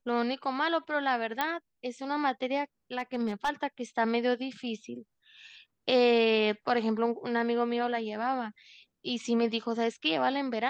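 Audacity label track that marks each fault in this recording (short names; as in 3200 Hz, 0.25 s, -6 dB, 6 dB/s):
1.410000	1.410000	pop -14 dBFS
2.980000	3.500000	clipped -23.5 dBFS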